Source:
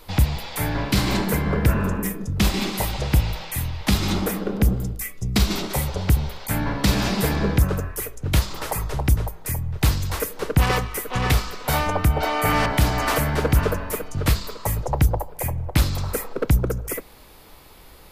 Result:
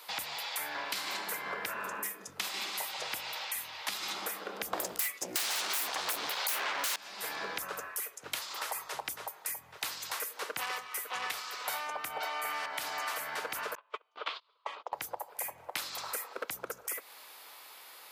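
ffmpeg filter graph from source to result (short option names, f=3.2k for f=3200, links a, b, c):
-filter_complex "[0:a]asettb=1/sr,asplit=3[a][b][c];[a]atrim=end=4.734[d];[b]atrim=start=4.73:end=6.96,asetpts=PTS-STARTPTS,afade=t=in:d=0.004:c=qsin,afade=t=out:st=2.226:d=0.004:c=qsin,acontrast=49,aeval=exprs='0.668*sin(PI/2*7.94*val(0)/0.668)':c=same[e];[c]atrim=start=6.956[f];[d][e]acrossfade=d=0.004:c1=hsin:c2=qsin[g];[g][f]acrossfade=d=0.004:c1=qsin:c2=hsin,asettb=1/sr,asplit=3[h][i][j];[h]atrim=end=13.754[k];[i]atrim=start=13.75:end=14.93,asetpts=PTS-STARTPTS,afade=t=in:d=0.004:c=qsin,afade=t=out:st=1.176:d=0.004:c=qsin,agate=range=-31dB:threshold=-25dB:ratio=16:release=100:detection=peak,highpass=f=350:w=0.5412,highpass=f=350:w=1.3066,equalizer=f=1.1k:t=q:w=4:g=5,equalizer=f=1.8k:t=q:w=4:g=-7,equalizer=f=3.3k:t=q:w=4:g=6,lowpass=f=3.7k:w=0.5412,lowpass=f=3.7k:w=1.3066[l];[j]atrim=start=14.926[m];[k][l]acrossfade=d=0.004:c1=hsin:c2=qsin[n];[n][m]acrossfade=d=0.004:c1=qsin:c2=hsin,highpass=890,acompressor=threshold=-34dB:ratio=6"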